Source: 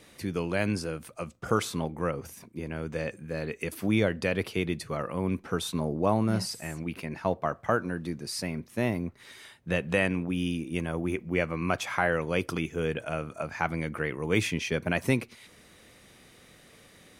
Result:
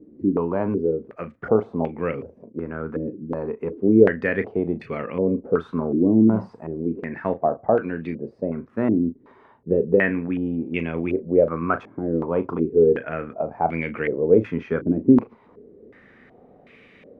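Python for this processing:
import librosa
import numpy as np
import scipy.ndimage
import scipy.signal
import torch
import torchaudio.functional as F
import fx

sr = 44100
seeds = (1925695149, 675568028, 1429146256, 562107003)

y = fx.doubler(x, sr, ms=36.0, db=-11.0)
y = fx.small_body(y, sr, hz=(250.0, 410.0), ring_ms=25, db=9)
y = fx.filter_held_lowpass(y, sr, hz=2.7, low_hz=310.0, high_hz=2400.0)
y = F.gain(torch.from_numpy(y), -2.0).numpy()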